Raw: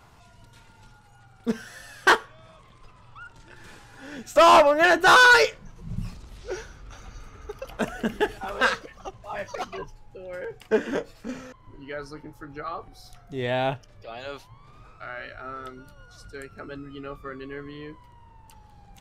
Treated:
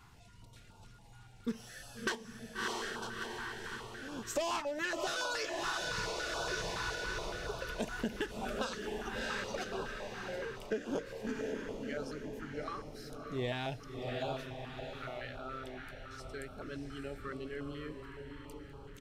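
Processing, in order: on a send: diffused feedback echo 0.653 s, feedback 50%, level -6 dB; on the sum: dynamic EQ 6300 Hz, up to +7 dB, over -43 dBFS, Q 1; echo 0.947 s -20 dB; compressor 16:1, threshold -26 dBFS, peak gain reduction 16.5 dB; stepped notch 7.1 Hz 580–1900 Hz; gain -4 dB

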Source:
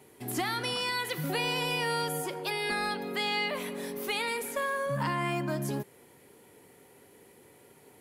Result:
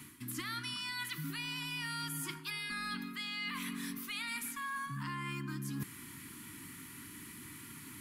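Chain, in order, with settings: Chebyshev band-stop 300–1100 Hz, order 3; reverse; compressor 8:1, threshold -49 dBFS, peak gain reduction 19.5 dB; reverse; gain +11 dB

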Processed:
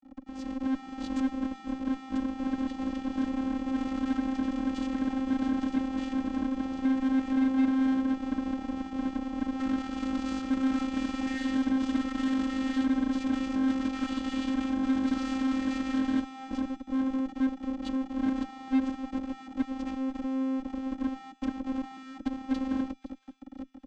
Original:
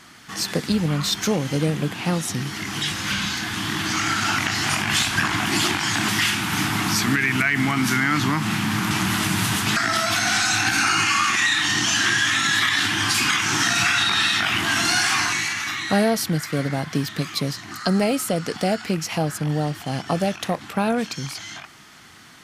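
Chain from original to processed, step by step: speed glide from 107% -> 81%; resonant low shelf 400 Hz +14 dB, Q 1.5; compressor 16:1, threshold -18 dBFS, peak gain reduction 17.5 dB; Schmitt trigger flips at -31 dBFS; resonator 200 Hz, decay 1.7 s, mix 60%; vocoder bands 16, square 264 Hz; added harmonics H 8 -21 dB, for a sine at -19.5 dBFS; AGC gain up to 10 dB; thin delay 0.514 s, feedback 38%, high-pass 2700 Hz, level -17.5 dB; gain -8.5 dB

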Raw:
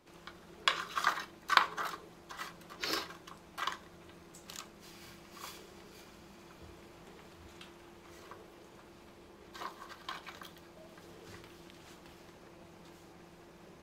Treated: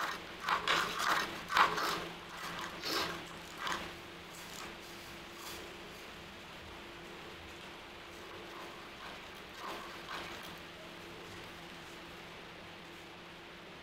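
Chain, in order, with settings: band noise 310–3500 Hz -55 dBFS; transient shaper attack -11 dB, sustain +7 dB; reverse echo 1.082 s -6 dB; gain +1.5 dB

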